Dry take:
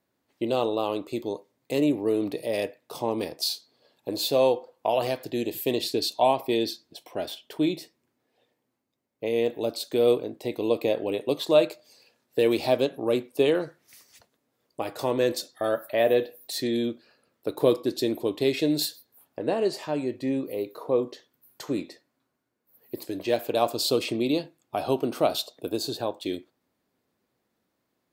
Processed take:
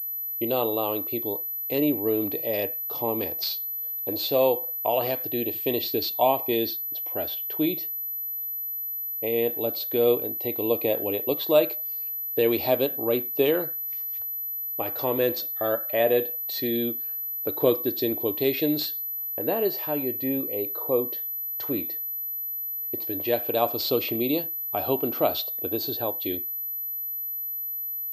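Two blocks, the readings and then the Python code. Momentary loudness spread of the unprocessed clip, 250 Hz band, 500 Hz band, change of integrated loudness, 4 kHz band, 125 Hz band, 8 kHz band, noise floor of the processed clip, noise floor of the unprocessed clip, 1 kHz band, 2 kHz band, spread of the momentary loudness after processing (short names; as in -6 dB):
12 LU, -0.5 dB, 0.0 dB, +1.5 dB, -1.5 dB, -0.5 dB, n/a, -32 dBFS, -78 dBFS, 0.0 dB, 0.0 dB, 6 LU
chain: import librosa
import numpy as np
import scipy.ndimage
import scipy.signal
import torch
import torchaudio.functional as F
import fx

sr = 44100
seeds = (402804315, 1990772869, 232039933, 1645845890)

y = fx.low_shelf_res(x, sr, hz=100.0, db=6.5, q=1.5)
y = fx.pwm(y, sr, carrier_hz=12000.0)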